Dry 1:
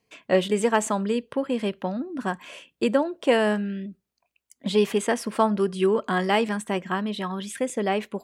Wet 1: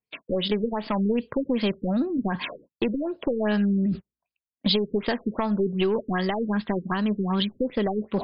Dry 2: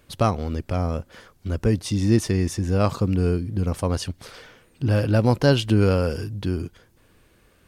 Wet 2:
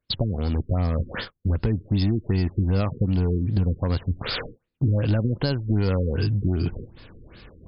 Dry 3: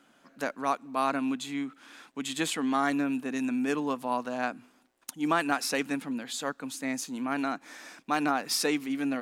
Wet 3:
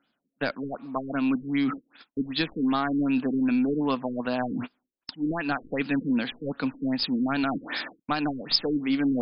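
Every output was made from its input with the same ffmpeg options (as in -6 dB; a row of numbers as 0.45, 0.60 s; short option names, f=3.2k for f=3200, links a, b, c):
-af "agate=range=-32dB:threshold=-46dB:ratio=16:detection=peak,highshelf=f=2.8k:g=5.5,aeval=exprs='0.631*(cos(1*acos(clip(val(0)/0.631,-1,1)))-cos(1*PI/2))+0.0282*(cos(4*acos(clip(val(0)/0.631,-1,1)))-cos(4*PI/2))':c=same,areverse,acompressor=mode=upward:threshold=-22dB:ratio=2.5,areverse,alimiter=limit=-15dB:level=0:latency=1:release=338,acompressor=threshold=-25dB:ratio=4,aeval=exprs='clip(val(0),-1,0.0708)':c=same,bass=f=250:g=4,treble=f=4k:g=13,afftfilt=real='re*lt(b*sr/1024,470*pow(5300/470,0.5+0.5*sin(2*PI*2.6*pts/sr)))':imag='im*lt(b*sr/1024,470*pow(5300/470,0.5+0.5*sin(2*PI*2.6*pts/sr)))':win_size=1024:overlap=0.75,volume=3.5dB"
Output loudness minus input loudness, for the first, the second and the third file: -1.0, -2.0, +3.0 LU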